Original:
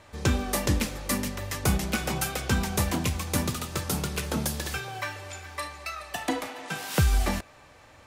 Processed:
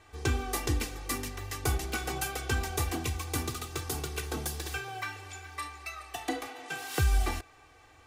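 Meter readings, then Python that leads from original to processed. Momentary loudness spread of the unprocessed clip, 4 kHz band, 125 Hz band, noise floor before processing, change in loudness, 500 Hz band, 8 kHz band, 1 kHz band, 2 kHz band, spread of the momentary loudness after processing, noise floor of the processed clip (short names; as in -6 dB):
9 LU, -5.0 dB, -5.0 dB, -53 dBFS, -5.0 dB, -5.0 dB, -4.5 dB, -3.5 dB, -3.5 dB, 9 LU, -58 dBFS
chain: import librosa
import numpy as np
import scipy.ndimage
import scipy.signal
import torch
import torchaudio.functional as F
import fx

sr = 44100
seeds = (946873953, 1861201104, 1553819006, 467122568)

y = x + 0.85 * np.pad(x, (int(2.6 * sr / 1000.0), 0))[:len(x)]
y = y * 10.0 ** (-7.0 / 20.0)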